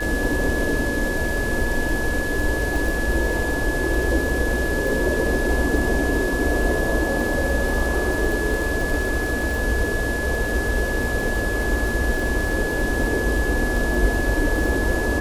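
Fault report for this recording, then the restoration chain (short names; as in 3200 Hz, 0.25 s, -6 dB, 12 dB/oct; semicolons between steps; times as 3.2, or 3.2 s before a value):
crackle 28/s -25 dBFS
tone 1700 Hz -26 dBFS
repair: de-click; notch 1700 Hz, Q 30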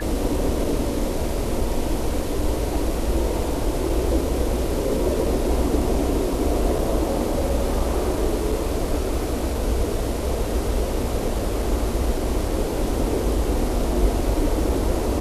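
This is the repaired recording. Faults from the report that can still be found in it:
none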